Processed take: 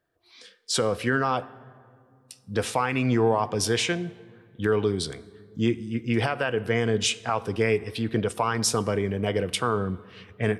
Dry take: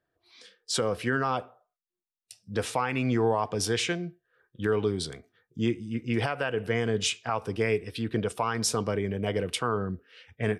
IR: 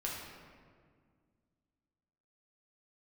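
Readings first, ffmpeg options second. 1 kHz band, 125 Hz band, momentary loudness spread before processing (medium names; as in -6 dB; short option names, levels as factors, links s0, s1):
+3.0 dB, +3.5 dB, 7 LU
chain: -filter_complex "[0:a]asplit=2[s0][s1];[1:a]atrim=start_sample=2205,asetrate=34398,aresample=44100,highshelf=f=8100:g=5.5[s2];[s1][s2]afir=irnorm=-1:irlink=0,volume=0.0891[s3];[s0][s3]amix=inputs=2:normalize=0,volume=1.33"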